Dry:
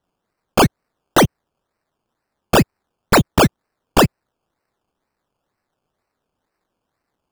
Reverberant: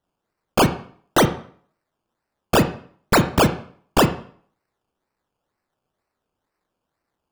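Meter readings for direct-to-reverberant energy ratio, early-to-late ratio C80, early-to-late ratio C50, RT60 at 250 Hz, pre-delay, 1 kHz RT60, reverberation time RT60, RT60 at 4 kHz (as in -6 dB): 7.5 dB, 15.0 dB, 11.5 dB, 0.50 s, 23 ms, 0.50 s, 0.50 s, 0.45 s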